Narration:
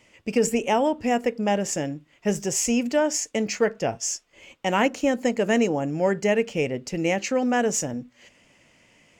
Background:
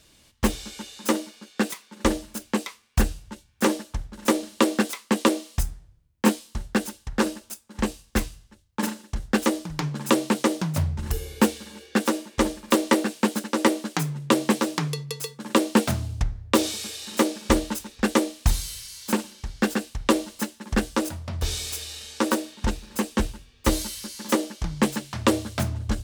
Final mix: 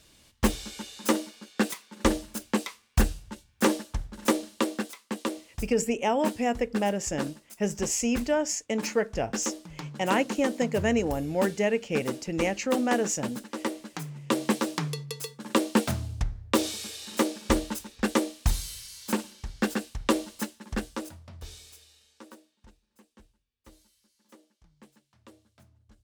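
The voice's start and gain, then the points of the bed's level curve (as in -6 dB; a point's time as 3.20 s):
5.35 s, -4.0 dB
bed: 4.20 s -1.5 dB
4.94 s -11 dB
14.02 s -11 dB
14.47 s -4 dB
20.43 s -4 dB
22.87 s -33 dB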